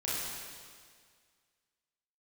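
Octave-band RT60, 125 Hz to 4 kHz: 1.9, 1.9, 1.9, 1.9, 1.9, 1.9 seconds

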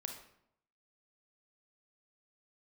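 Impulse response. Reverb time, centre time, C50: 0.75 s, 24 ms, 5.5 dB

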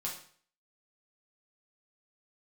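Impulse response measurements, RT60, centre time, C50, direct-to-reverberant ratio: 0.50 s, 28 ms, 6.0 dB, −3.5 dB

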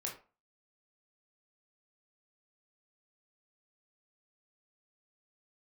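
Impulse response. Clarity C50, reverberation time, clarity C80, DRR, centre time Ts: 8.5 dB, 0.35 s, 14.0 dB, −1.5 dB, 24 ms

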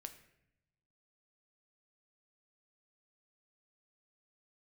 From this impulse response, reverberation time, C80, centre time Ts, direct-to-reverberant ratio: 0.80 s, 14.0 dB, 10 ms, 7.5 dB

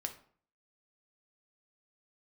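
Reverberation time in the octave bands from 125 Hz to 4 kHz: 0.60, 0.55, 0.50, 0.50, 0.40, 0.35 seconds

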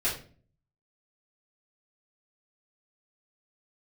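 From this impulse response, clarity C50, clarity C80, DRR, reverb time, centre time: 7.0 dB, 12.5 dB, −7.5 dB, 0.40 s, 28 ms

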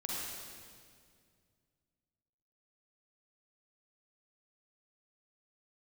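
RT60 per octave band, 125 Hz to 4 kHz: 3.0, 2.6, 2.3, 1.9, 1.9, 1.8 seconds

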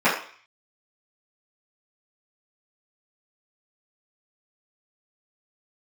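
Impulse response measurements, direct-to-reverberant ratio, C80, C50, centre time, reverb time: −13.0 dB, 9.5 dB, 5.5 dB, 34 ms, 0.45 s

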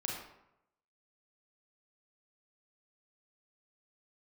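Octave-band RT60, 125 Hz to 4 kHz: 0.90, 0.80, 0.85, 0.85, 0.70, 0.50 seconds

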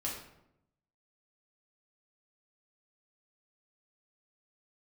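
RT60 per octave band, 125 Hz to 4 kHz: 1.1, 1.0, 0.90, 0.75, 0.65, 0.50 seconds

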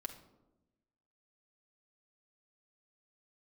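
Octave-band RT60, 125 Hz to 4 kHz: 1.3, 1.4, 1.1, 0.85, 0.55, 0.50 seconds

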